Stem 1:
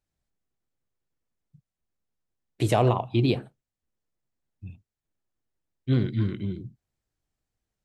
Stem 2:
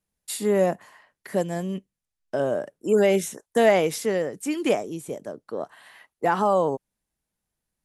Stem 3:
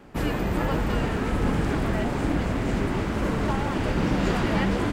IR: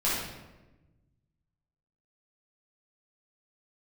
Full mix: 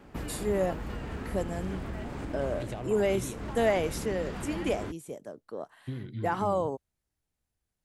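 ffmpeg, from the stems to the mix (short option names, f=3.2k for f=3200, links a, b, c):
-filter_complex "[0:a]volume=-3.5dB[a];[1:a]volume=-7.5dB[b];[2:a]volume=-4dB[c];[a][c]amix=inputs=2:normalize=0,acompressor=threshold=-34dB:ratio=12,volume=0dB[d];[b][d]amix=inputs=2:normalize=0,equalizer=f=69:w=2.4:g=6.5"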